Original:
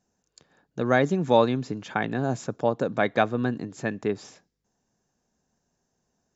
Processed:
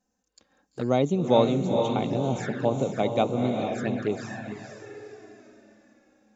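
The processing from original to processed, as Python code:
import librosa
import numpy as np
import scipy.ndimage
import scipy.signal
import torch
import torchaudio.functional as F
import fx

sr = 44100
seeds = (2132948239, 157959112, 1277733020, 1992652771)

y = fx.echo_diffused(x, sr, ms=457, feedback_pct=42, wet_db=-4.0)
y = fx.env_flanger(y, sr, rest_ms=3.9, full_db=-21.5)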